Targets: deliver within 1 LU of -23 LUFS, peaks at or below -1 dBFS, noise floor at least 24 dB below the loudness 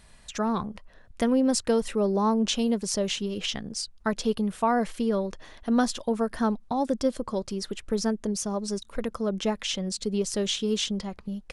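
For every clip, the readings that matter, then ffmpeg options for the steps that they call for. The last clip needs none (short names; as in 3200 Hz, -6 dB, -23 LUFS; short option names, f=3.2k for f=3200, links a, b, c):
loudness -27.5 LUFS; peak -11.5 dBFS; loudness target -23.0 LUFS
-> -af "volume=4.5dB"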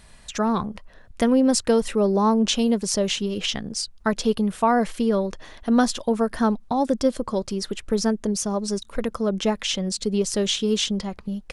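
loudness -23.0 LUFS; peak -7.0 dBFS; noise floor -48 dBFS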